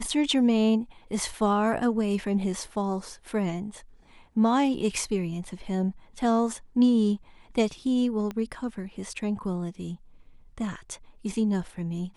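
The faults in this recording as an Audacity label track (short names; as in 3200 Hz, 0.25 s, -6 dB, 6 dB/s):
8.310000	8.310000	pop -21 dBFS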